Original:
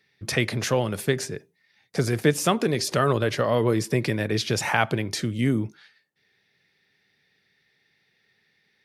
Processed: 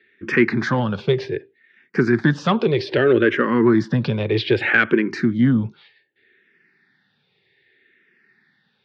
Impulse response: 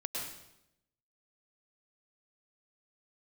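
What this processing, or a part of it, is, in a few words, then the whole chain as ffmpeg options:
barber-pole phaser into a guitar amplifier: -filter_complex "[0:a]asplit=2[s0][s1];[s1]afreqshift=-0.64[s2];[s0][s2]amix=inputs=2:normalize=1,asoftclip=type=tanh:threshold=0.178,highpass=100,equalizer=f=240:t=q:w=4:g=5,equalizer=f=360:t=q:w=4:g=8,equalizer=f=670:t=q:w=4:g=-7,equalizer=f=1600:t=q:w=4:g=7,lowpass=f=3700:w=0.5412,lowpass=f=3700:w=1.3066,volume=2.37"

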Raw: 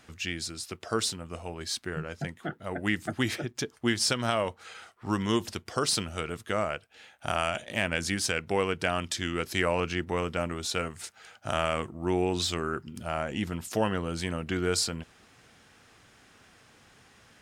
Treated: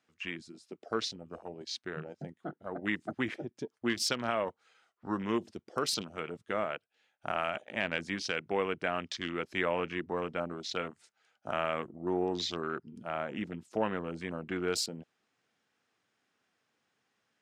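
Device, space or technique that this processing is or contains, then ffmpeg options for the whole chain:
over-cleaned archive recording: -af "highpass=180,lowpass=7900,afwtdn=0.0158,volume=0.668"

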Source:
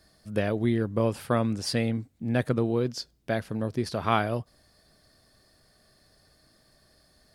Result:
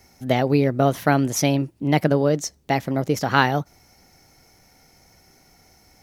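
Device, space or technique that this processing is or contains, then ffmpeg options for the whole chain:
nightcore: -af "asetrate=53802,aresample=44100,volume=2.24"

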